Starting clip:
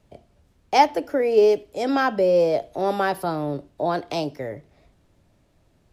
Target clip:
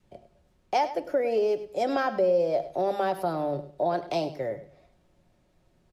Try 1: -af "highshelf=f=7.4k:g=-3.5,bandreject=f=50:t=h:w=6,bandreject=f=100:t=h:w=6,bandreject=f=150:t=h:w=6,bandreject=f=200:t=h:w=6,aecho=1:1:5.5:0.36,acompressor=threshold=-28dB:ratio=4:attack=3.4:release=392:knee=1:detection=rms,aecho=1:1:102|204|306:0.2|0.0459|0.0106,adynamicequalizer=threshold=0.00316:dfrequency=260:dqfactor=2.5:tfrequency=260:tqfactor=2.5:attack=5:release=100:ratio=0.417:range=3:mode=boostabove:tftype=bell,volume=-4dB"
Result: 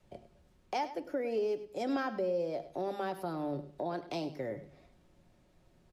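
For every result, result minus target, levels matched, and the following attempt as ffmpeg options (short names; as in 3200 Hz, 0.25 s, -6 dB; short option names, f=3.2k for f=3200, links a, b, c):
compressor: peak gain reduction +7 dB; 250 Hz band +5.0 dB
-af "highshelf=f=7.4k:g=-3.5,bandreject=f=50:t=h:w=6,bandreject=f=100:t=h:w=6,bandreject=f=150:t=h:w=6,bandreject=f=200:t=h:w=6,aecho=1:1:5.5:0.36,acompressor=threshold=-18.5dB:ratio=4:attack=3.4:release=392:knee=1:detection=rms,aecho=1:1:102|204|306:0.2|0.0459|0.0106,adynamicequalizer=threshold=0.00316:dfrequency=260:dqfactor=2.5:tfrequency=260:tqfactor=2.5:attack=5:release=100:ratio=0.417:range=3:mode=boostabove:tftype=bell,volume=-4dB"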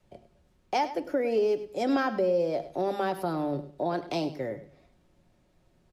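250 Hz band +5.0 dB
-af "highshelf=f=7.4k:g=-3.5,bandreject=f=50:t=h:w=6,bandreject=f=100:t=h:w=6,bandreject=f=150:t=h:w=6,bandreject=f=200:t=h:w=6,aecho=1:1:5.5:0.36,acompressor=threshold=-18.5dB:ratio=4:attack=3.4:release=392:knee=1:detection=rms,aecho=1:1:102|204|306:0.2|0.0459|0.0106,adynamicequalizer=threshold=0.00316:dfrequency=640:dqfactor=2.5:tfrequency=640:tqfactor=2.5:attack=5:release=100:ratio=0.417:range=3:mode=boostabove:tftype=bell,volume=-4dB"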